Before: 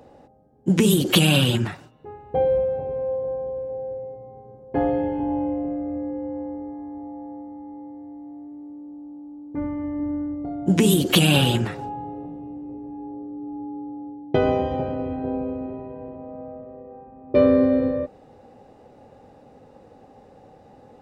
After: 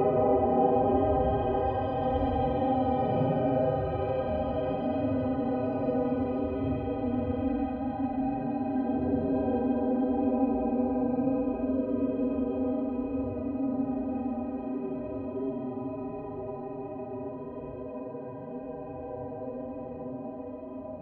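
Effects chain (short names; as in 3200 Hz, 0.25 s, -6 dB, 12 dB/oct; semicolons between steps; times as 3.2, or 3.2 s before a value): treble ducked by the level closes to 1300 Hz, closed at -16.5 dBFS; Paulstretch 13×, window 0.05 s, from 14.55; harmonic-percussive split percussive -16 dB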